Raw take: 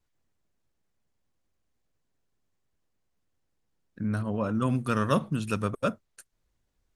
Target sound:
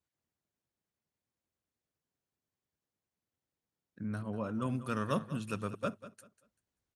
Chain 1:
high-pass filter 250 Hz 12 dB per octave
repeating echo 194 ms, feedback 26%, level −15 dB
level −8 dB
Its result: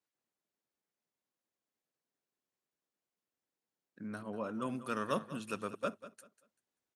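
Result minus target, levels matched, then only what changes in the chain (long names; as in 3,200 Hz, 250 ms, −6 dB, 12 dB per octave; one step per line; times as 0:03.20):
125 Hz band −8.0 dB
change: high-pass filter 82 Hz 12 dB per octave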